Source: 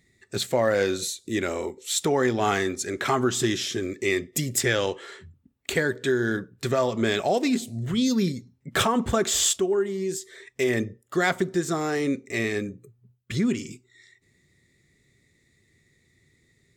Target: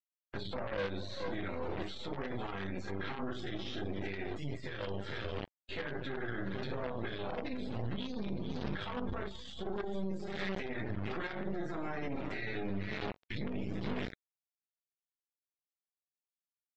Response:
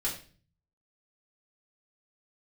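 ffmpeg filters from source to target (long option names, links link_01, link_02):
-filter_complex "[0:a]lowshelf=frequency=89:gain=10.5[link_01];[1:a]atrim=start_sample=2205,asetrate=48510,aresample=44100[link_02];[link_01][link_02]afir=irnorm=-1:irlink=0,acrossover=split=350[link_03][link_04];[link_03]asoftclip=type=tanh:threshold=-17.5dB[link_05];[link_05][link_04]amix=inputs=2:normalize=0,asplit=2[link_06][link_07];[link_07]adelay=20,volume=-5.5dB[link_08];[link_06][link_08]amix=inputs=2:normalize=0,aecho=1:1:447|894:0.158|0.0254,acrusher=bits=3:dc=4:mix=0:aa=0.000001,acompressor=threshold=-40dB:ratio=3,alimiter=level_in=10.5dB:limit=-24dB:level=0:latency=1:release=37,volume=-10.5dB,afftdn=noise_reduction=18:noise_floor=-55,lowpass=frequency=4100:width=0.5412,lowpass=frequency=4100:width=1.3066,volume=7.5dB"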